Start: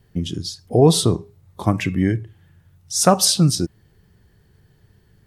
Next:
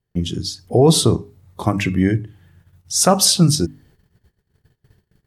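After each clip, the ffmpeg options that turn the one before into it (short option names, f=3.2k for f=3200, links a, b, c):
-af "bandreject=f=50:t=h:w=6,bandreject=f=100:t=h:w=6,bandreject=f=150:t=h:w=6,bandreject=f=200:t=h:w=6,bandreject=f=250:t=h:w=6,bandreject=f=300:t=h:w=6,agate=range=-23dB:threshold=-53dB:ratio=16:detection=peak,alimiter=level_in=5dB:limit=-1dB:release=50:level=0:latency=1,volume=-2dB"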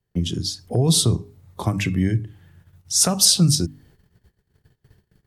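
-filter_complex "[0:a]acrossover=split=180|3000[a][b][c];[b]acompressor=threshold=-27dB:ratio=3[d];[a][d][c]amix=inputs=3:normalize=0"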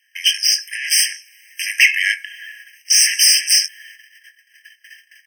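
-filter_complex "[0:a]asplit=2[a][b];[b]highpass=f=720:p=1,volume=33dB,asoftclip=type=tanh:threshold=-3dB[c];[a][c]amix=inputs=2:normalize=0,lowpass=f=4.2k:p=1,volume=-6dB,asplit=2[d][e];[e]adelay=21,volume=-11.5dB[f];[d][f]amix=inputs=2:normalize=0,afftfilt=real='re*eq(mod(floor(b*sr/1024/1600),2),1)':imag='im*eq(mod(floor(b*sr/1024/1600),2),1)':win_size=1024:overlap=0.75,volume=3.5dB"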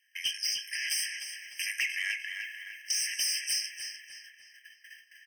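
-filter_complex "[0:a]acompressor=threshold=-19dB:ratio=5,asoftclip=type=tanh:threshold=-11dB,asplit=2[a][b];[b]adelay=301,lowpass=f=4.8k:p=1,volume=-6dB,asplit=2[c][d];[d]adelay=301,lowpass=f=4.8k:p=1,volume=0.5,asplit=2[e][f];[f]adelay=301,lowpass=f=4.8k:p=1,volume=0.5,asplit=2[g][h];[h]adelay=301,lowpass=f=4.8k:p=1,volume=0.5,asplit=2[i][j];[j]adelay=301,lowpass=f=4.8k:p=1,volume=0.5,asplit=2[k][l];[l]adelay=301,lowpass=f=4.8k:p=1,volume=0.5[m];[c][e][g][i][k][m]amix=inputs=6:normalize=0[n];[a][n]amix=inputs=2:normalize=0,volume=-9dB"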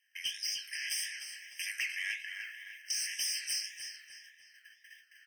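-af "flanger=delay=9.7:depth=9.3:regen=71:speed=1.8:shape=triangular"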